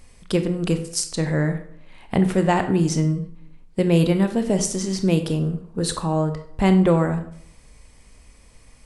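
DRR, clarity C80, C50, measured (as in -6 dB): 7.5 dB, 14.0 dB, 10.5 dB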